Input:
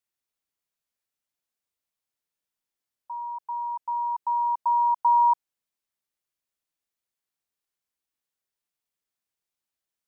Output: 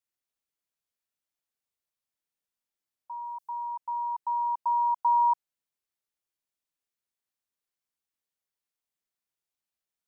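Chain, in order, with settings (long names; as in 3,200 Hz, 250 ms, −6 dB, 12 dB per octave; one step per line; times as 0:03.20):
0:03.25–0:03.67: bass and treble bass +5 dB, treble +10 dB
level −3.5 dB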